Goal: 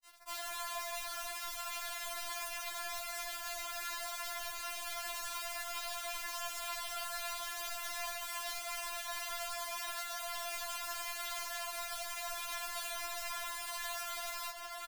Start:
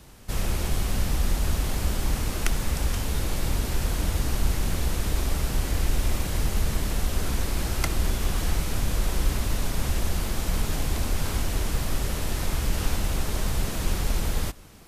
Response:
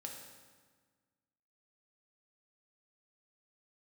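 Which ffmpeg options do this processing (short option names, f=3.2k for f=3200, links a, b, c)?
-filter_complex "[0:a]highpass=120,highshelf=f=1.9k:t=q:w=1.5:g=-7,acrossover=split=600|4600[a][b][c];[b]acontrast=36[d];[c]aecho=1:1:2.3:0.49[e];[a][d][e]amix=inputs=3:normalize=0,asplit=2[f][g];[g]adelay=641.4,volume=-9dB,highshelf=f=4k:g=-14.4[h];[f][h]amix=inputs=2:normalize=0,aeval=exprs='(mod(20*val(0)+1,2)-1)/20':c=same,acompressor=threshold=-37dB:ratio=12,acrusher=bits=6:mix=0:aa=0.000001,afftfilt=real='re*(1-between(b*sr/4096,160,390))':imag='im*(1-between(b*sr/4096,160,390))':win_size=4096:overlap=0.75,asoftclip=type=tanh:threshold=-33dB,afftfilt=real='re*4*eq(mod(b,16),0)':imag='im*4*eq(mod(b,16),0)':win_size=2048:overlap=0.75,volume=2.5dB"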